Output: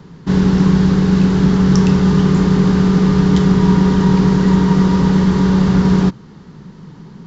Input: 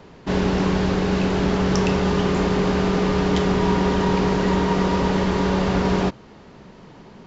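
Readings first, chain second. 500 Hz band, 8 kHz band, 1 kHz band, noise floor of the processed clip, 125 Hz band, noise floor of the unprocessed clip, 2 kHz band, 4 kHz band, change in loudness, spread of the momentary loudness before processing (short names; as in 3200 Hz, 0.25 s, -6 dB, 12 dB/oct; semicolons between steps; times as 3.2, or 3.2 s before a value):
+1.0 dB, n/a, 0.0 dB, -39 dBFS, +10.5 dB, -46 dBFS, +0.5 dB, +1.0 dB, +7.5 dB, 1 LU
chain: fifteen-band EQ 160 Hz +11 dB, 630 Hz -11 dB, 2500 Hz -7 dB; gain +3.5 dB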